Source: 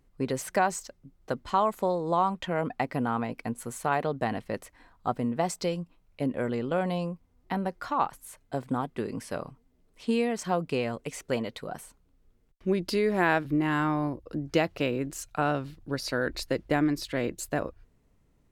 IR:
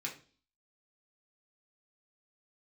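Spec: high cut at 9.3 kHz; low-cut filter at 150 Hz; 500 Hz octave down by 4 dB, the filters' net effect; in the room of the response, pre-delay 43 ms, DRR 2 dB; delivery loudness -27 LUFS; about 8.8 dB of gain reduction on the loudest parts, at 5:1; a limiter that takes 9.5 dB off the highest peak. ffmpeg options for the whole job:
-filter_complex "[0:a]highpass=150,lowpass=9300,equalizer=f=500:t=o:g=-5,acompressor=threshold=0.0282:ratio=5,alimiter=level_in=1.26:limit=0.0631:level=0:latency=1,volume=0.794,asplit=2[s0][s1];[1:a]atrim=start_sample=2205,adelay=43[s2];[s1][s2]afir=irnorm=-1:irlink=0,volume=0.708[s3];[s0][s3]amix=inputs=2:normalize=0,volume=3.16"

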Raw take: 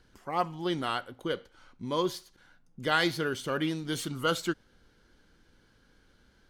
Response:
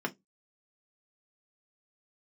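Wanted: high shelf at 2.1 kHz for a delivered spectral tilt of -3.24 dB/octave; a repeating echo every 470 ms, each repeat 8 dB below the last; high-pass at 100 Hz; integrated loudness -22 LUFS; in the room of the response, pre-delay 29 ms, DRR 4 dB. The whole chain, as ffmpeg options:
-filter_complex "[0:a]highpass=100,highshelf=f=2100:g=8.5,aecho=1:1:470|940|1410|1880|2350:0.398|0.159|0.0637|0.0255|0.0102,asplit=2[s0][s1];[1:a]atrim=start_sample=2205,adelay=29[s2];[s1][s2]afir=irnorm=-1:irlink=0,volume=0.335[s3];[s0][s3]amix=inputs=2:normalize=0,volume=1.88"

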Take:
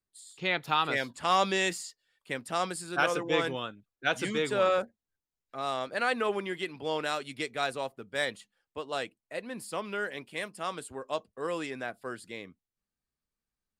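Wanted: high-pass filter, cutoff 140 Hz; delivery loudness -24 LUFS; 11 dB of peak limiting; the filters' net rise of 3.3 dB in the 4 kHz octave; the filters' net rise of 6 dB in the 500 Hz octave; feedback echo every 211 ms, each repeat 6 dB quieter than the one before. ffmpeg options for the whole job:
-af "highpass=140,equalizer=f=500:t=o:g=7,equalizer=f=4000:t=o:g=4,alimiter=limit=0.106:level=0:latency=1,aecho=1:1:211|422|633|844|1055|1266:0.501|0.251|0.125|0.0626|0.0313|0.0157,volume=2.24"

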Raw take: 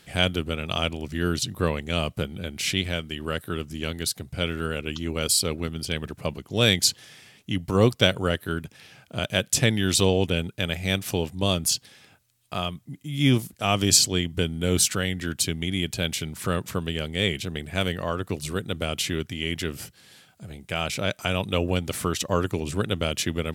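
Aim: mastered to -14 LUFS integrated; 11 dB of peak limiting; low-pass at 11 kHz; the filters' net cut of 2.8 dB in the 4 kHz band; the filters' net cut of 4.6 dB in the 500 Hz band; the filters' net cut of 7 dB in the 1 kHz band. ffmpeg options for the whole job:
-af "lowpass=11000,equalizer=f=500:t=o:g=-3.5,equalizer=f=1000:t=o:g=-9,equalizer=f=4000:t=o:g=-3,volume=6.68,alimiter=limit=1:level=0:latency=1"

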